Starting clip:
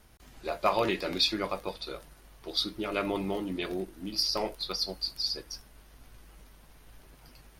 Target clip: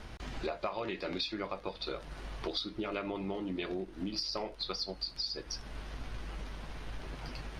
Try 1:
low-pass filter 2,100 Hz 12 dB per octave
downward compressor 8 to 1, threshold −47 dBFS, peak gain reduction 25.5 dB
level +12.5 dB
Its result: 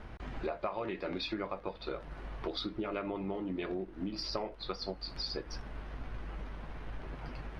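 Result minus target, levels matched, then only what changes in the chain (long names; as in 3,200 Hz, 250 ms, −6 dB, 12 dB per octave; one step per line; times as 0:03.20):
4,000 Hz band −3.0 dB
change: low-pass filter 4,600 Hz 12 dB per octave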